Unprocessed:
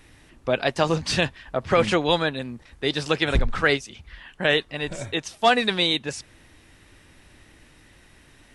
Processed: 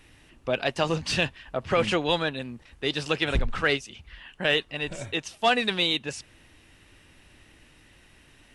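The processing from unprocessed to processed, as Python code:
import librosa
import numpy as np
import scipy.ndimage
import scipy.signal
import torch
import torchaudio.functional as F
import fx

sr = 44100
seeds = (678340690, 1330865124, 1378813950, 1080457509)

p1 = fx.peak_eq(x, sr, hz=2800.0, db=6.0, octaves=0.31)
p2 = 10.0 ** (-17.5 / 20.0) * np.tanh(p1 / 10.0 ** (-17.5 / 20.0))
p3 = p1 + F.gain(torch.from_numpy(p2), -11.0).numpy()
y = F.gain(torch.from_numpy(p3), -5.5).numpy()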